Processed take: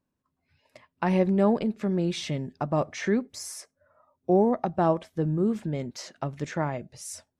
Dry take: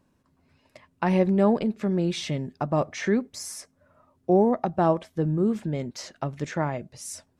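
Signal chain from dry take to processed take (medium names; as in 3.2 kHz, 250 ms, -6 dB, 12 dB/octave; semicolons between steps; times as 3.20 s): spectral noise reduction 13 dB; trim -1.5 dB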